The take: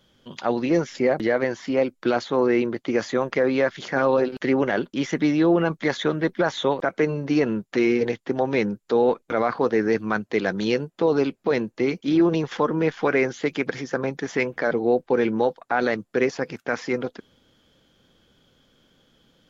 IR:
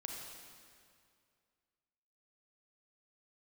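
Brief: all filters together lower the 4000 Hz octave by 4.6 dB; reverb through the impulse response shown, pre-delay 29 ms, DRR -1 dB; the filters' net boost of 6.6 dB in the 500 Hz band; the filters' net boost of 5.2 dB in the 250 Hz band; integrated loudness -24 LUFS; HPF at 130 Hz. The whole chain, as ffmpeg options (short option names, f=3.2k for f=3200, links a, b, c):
-filter_complex "[0:a]highpass=130,equalizer=f=250:t=o:g=4.5,equalizer=f=500:t=o:g=6.5,equalizer=f=4k:t=o:g=-6,asplit=2[a][b];[1:a]atrim=start_sample=2205,adelay=29[c];[b][c]afir=irnorm=-1:irlink=0,volume=2.5dB[d];[a][d]amix=inputs=2:normalize=0,volume=-9.5dB"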